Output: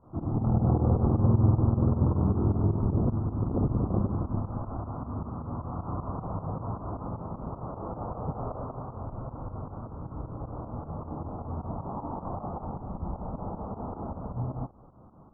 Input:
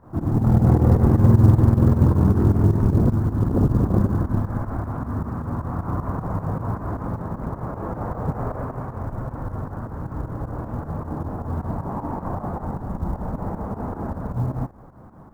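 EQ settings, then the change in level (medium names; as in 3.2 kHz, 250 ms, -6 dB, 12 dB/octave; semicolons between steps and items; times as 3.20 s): elliptic low-pass 1.3 kHz, stop band 40 dB; dynamic bell 780 Hz, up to +3 dB, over -39 dBFS, Q 1.6; -7.5 dB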